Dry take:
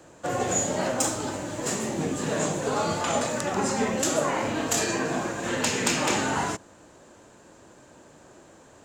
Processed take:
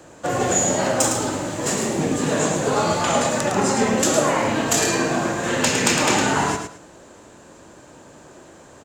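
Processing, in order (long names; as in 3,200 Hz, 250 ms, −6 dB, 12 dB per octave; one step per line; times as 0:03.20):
repeating echo 108 ms, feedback 23%, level −6.5 dB
level +5.5 dB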